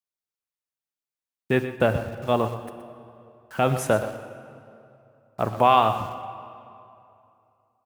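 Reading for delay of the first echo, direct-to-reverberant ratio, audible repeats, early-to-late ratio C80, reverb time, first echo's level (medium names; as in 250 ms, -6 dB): 122 ms, 8.5 dB, 1, 9.5 dB, 2.7 s, -12.5 dB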